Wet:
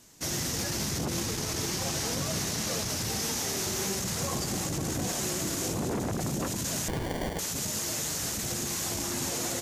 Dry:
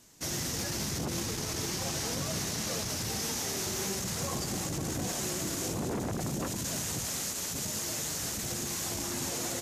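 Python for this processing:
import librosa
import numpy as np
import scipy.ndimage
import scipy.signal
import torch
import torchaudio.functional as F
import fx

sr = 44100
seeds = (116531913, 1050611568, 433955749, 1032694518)

y = fx.sample_hold(x, sr, seeds[0], rate_hz=1300.0, jitter_pct=0, at=(6.88, 7.39))
y = y * 10.0 ** (2.5 / 20.0)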